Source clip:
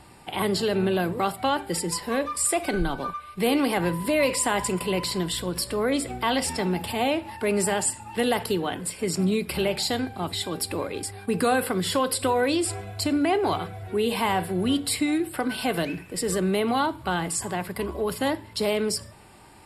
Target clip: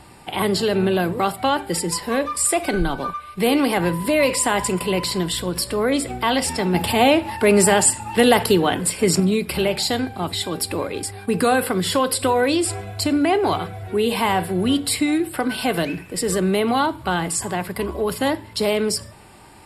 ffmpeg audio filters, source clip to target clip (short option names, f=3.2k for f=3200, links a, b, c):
-filter_complex "[0:a]asettb=1/sr,asplit=3[a][b][c];[a]atrim=end=6.744[d];[b]atrim=start=6.74:end=9.2,asetpts=PTS-STARTPTS,afade=t=in:d=0.004:c=qsin,afade=t=out:st=2.456:d=0.004:c=qsin,acontrast=24[e];[c]atrim=start=9.196[f];[d][e]acrossfade=d=0.004:c1=hsin:c2=qsin[g];[g][f]acrossfade=d=0.004:c1=qsin:c2=hsin,volume=4.5dB"